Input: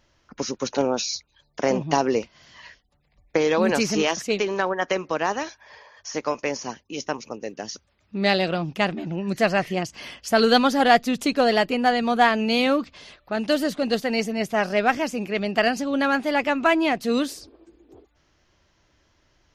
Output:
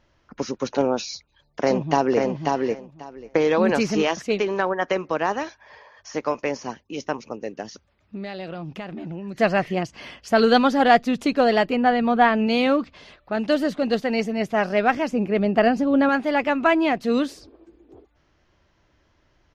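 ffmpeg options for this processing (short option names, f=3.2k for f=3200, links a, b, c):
-filter_complex "[0:a]asplit=2[a][b];[b]afade=t=in:st=1.12:d=0.01,afade=t=out:st=2.2:d=0.01,aecho=0:1:540|1080|1620:0.707946|0.106192|0.0159288[c];[a][c]amix=inputs=2:normalize=0,asettb=1/sr,asplit=3[d][e][f];[d]atrim=end=7.624[g];[e]atrim=start=7.62:end=9.4,asetpts=PTS-STARTPTS,afade=t=in:d=0.004:c=qsin,afade=t=out:st=1.776:d=0.004:c=qsin,acompressor=threshold=-31dB:ratio=6:attack=3.2:release=140:knee=1:detection=peak[h];[f]atrim=start=9.396[i];[g][h]acrossfade=d=0.004:c1=hsin:c2=qsin[j];[j][i]acrossfade=d=0.004:c1=qsin:c2=hsin,asettb=1/sr,asplit=3[k][l][m];[k]atrim=end=11.764[n];[l]atrim=start=11.76:end=12.47,asetpts=PTS-STARTPTS,afade=t=in:d=0.004:c=qsin,afade=t=out:st=0.706:d=0.004:c=qsin,bass=f=250:g=3,treble=f=4k:g=-9[o];[m]atrim=start=12.466[p];[n][o]acrossfade=d=0.004:c1=hsin:c2=qsin[q];[q][p]acrossfade=d=0.004:c1=qsin:c2=hsin,asettb=1/sr,asplit=3[r][s][t];[r]atrim=end=15.114[u];[s]atrim=start=15.11:end=16.09,asetpts=PTS-STARTPTS,afade=t=in:d=0.004:c=qsin,afade=t=out:st=0.976:d=0.004:c=qsin,tiltshelf=f=1.1k:g=5[v];[t]atrim=start=16.086[w];[u][v]acrossfade=d=0.004:c1=hsin:c2=qsin[x];[x][w]acrossfade=d=0.004:c1=qsin:c2=hsin,lowpass=f=2.5k:p=1,volume=1.5dB"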